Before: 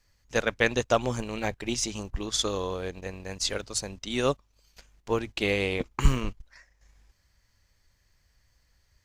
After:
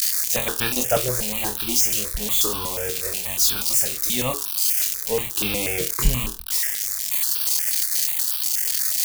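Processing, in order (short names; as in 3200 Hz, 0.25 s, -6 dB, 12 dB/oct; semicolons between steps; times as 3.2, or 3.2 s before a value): switching spikes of -15 dBFS; flutter echo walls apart 4.1 m, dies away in 0.25 s; step phaser 8.3 Hz 240–2000 Hz; gain +3 dB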